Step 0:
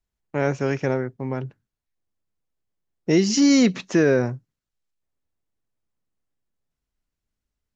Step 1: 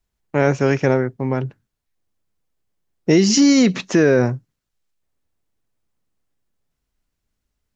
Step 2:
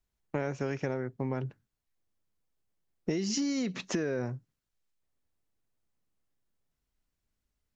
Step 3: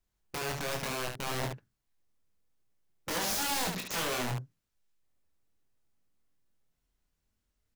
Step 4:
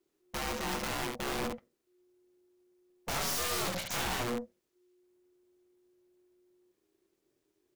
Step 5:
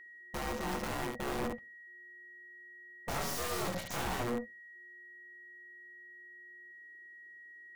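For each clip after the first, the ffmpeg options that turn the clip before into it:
ffmpeg -i in.wav -af "alimiter=level_in=11dB:limit=-1dB:release=50:level=0:latency=1,volume=-4.5dB" out.wav
ffmpeg -i in.wav -af "acompressor=threshold=-22dB:ratio=8,volume=-6.5dB" out.wav
ffmpeg -i in.wav -filter_complex "[0:a]aeval=exprs='(mod(29.9*val(0)+1,2)-1)/29.9':channel_layout=same,asplit=2[link_01][link_02];[link_02]aecho=0:1:24|72:0.596|0.562[link_03];[link_01][link_03]amix=inputs=2:normalize=0" out.wav
ffmpeg -i in.wav -af "aeval=exprs='val(0)*sin(2*PI*360*n/s)':channel_layout=same,aeval=exprs='(tanh(56.2*val(0)+0.45)-tanh(0.45))/56.2':channel_layout=same,volume=6.5dB" out.wav
ffmpeg -i in.wav -filter_complex "[0:a]asplit=2[link_01][link_02];[link_02]adynamicsmooth=sensitivity=4.5:basefreq=550,volume=-0.5dB[link_03];[link_01][link_03]amix=inputs=2:normalize=0,aeval=exprs='val(0)+0.00562*sin(2*PI*1900*n/s)':channel_layout=same,volume=-5.5dB" out.wav

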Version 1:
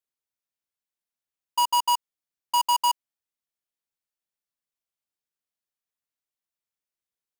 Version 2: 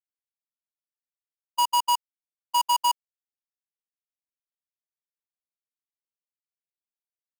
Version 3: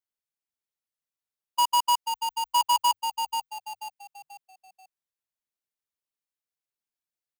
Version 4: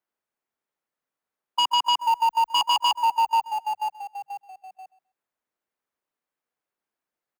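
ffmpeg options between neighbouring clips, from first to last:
ffmpeg -i in.wav -af "agate=range=-24dB:threshold=-24dB:ratio=16:detection=peak" out.wav
ffmpeg -i in.wav -filter_complex "[0:a]asplit=5[link_01][link_02][link_03][link_04][link_05];[link_02]adelay=486,afreqshift=-53,volume=-7dB[link_06];[link_03]adelay=972,afreqshift=-106,volume=-15.6dB[link_07];[link_04]adelay=1458,afreqshift=-159,volume=-24.3dB[link_08];[link_05]adelay=1944,afreqshift=-212,volume=-32.9dB[link_09];[link_01][link_06][link_07][link_08][link_09]amix=inputs=5:normalize=0" out.wav
ffmpeg -i in.wav -filter_complex "[0:a]acrossover=split=190 2000:gain=0.251 1 0.2[link_01][link_02][link_03];[link_01][link_02][link_03]amix=inputs=3:normalize=0,aecho=1:1:130|260:0.106|0.0169,aeval=exprs='0.158*sin(PI/2*2.51*val(0)/0.158)':channel_layout=same" out.wav

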